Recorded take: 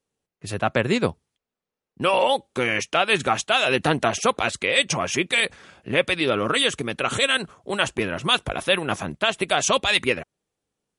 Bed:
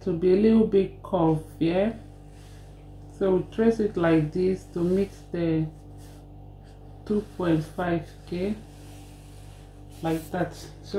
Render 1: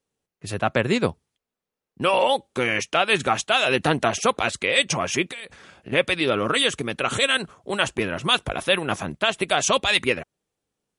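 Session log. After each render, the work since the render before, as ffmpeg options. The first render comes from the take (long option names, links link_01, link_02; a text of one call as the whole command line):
ffmpeg -i in.wav -filter_complex "[0:a]asettb=1/sr,asplit=3[link_01][link_02][link_03];[link_01]atrim=end=5.304[link_04];[link_02]atrim=start=5.3:end=5.92,asetpts=PTS-STARTPTS,afade=type=in:duration=0.004:curve=qsin,afade=type=out:start_time=0.616:duration=0.004:curve=qsin,acompressor=threshold=-31dB:ratio=16:attack=3.2:release=140:knee=1:detection=peak[link_05];[link_03]atrim=start=5.916[link_06];[link_04][link_05]acrossfade=duration=0.004:curve1=hsin:curve2=qsin[link_07];[link_07][link_06]acrossfade=duration=0.004:curve1=qsin:curve2=hsin" out.wav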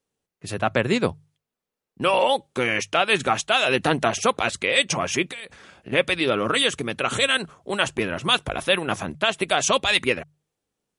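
ffmpeg -i in.wav -af "bandreject=frequency=50:width_type=h:width=6,bandreject=frequency=100:width_type=h:width=6,bandreject=frequency=150:width_type=h:width=6" out.wav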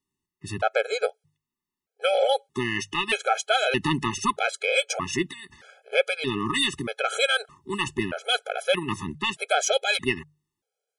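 ffmpeg -i in.wav -af "aeval=exprs='0.596*(cos(1*acos(clip(val(0)/0.596,-1,1)))-cos(1*PI/2))+0.0473*(cos(2*acos(clip(val(0)/0.596,-1,1)))-cos(2*PI/2))+0.00668*(cos(7*acos(clip(val(0)/0.596,-1,1)))-cos(7*PI/2))':channel_layout=same,afftfilt=real='re*gt(sin(2*PI*0.8*pts/sr)*(1-2*mod(floor(b*sr/1024/430),2)),0)':imag='im*gt(sin(2*PI*0.8*pts/sr)*(1-2*mod(floor(b*sr/1024/430),2)),0)':win_size=1024:overlap=0.75" out.wav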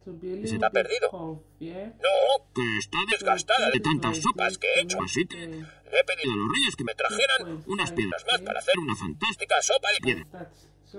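ffmpeg -i in.wav -i bed.wav -filter_complex "[1:a]volume=-14dB[link_01];[0:a][link_01]amix=inputs=2:normalize=0" out.wav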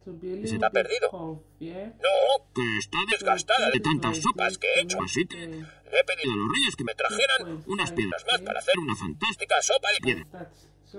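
ffmpeg -i in.wav -af anull out.wav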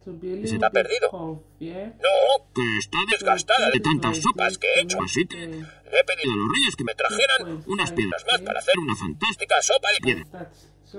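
ffmpeg -i in.wav -af "volume=3.5dB" out.wav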